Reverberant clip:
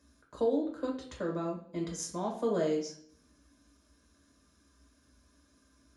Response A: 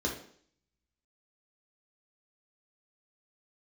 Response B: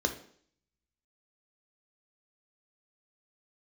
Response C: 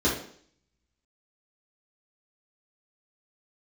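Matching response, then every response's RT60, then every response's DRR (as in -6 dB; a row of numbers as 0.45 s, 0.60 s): A; 0.55 s, 0.55 s, 0.55 s; -2.0 dB, 5.0 dB, -8.5 dB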